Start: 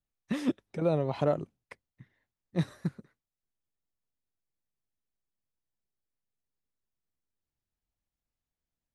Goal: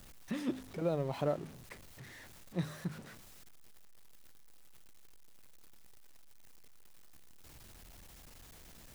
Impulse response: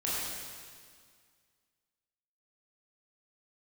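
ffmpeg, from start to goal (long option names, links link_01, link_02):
-af "aeval=exprs='val(0)+0.5*0.01*sgn(val(0))':channel_layout=same,bandreject=frequency=51.75:width_type=h:width=4,bandreject=frequency=103.5:width_type=h:width=4,bandreject=frequency=155.25:width_type=h:width=4,bandreject=frequency=207:width_type=h:width=4,bandreject=frequency=258.75:width_type=h:width=4,volume=-6.5dB"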